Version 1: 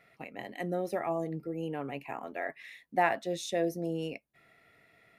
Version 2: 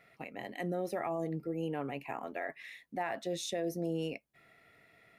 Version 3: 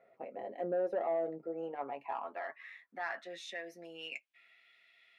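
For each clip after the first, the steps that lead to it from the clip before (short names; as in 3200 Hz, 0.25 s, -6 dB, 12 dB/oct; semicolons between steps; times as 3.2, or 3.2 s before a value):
limiter -26 dBFS, peak gain reduction 12 dB
band-pass sweep 550 Hz -> 3200 Hz, 0.99–4.71; soft clip -32.5 dBFS, distortion -19 dB; notch comb 150 Hz; gain +7.5 dB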